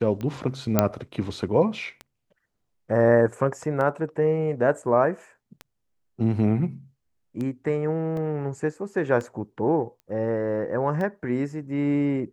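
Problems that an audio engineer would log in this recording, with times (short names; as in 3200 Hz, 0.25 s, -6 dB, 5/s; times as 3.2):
tick 33 1/3 rpm -21 dBFS
0.79 pop -4 dBFS
8.17 gap 2.6 ms
10 pop -33 dBFS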